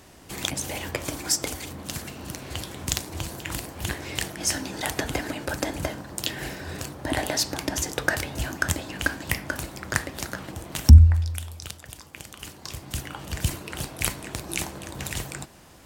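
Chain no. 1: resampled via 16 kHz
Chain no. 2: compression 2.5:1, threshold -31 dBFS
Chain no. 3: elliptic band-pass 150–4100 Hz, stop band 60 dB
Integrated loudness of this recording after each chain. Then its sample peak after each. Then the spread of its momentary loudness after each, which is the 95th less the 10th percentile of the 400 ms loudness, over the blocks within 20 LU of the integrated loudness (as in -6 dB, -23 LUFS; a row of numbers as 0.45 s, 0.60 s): -27.0 LUFS, -34.5 LUFS, -33.0 LUFS; -2.0 dBFS, -8.0 dBFS, -6.0 dBFS; 12 LU, 6 LU, 13 LU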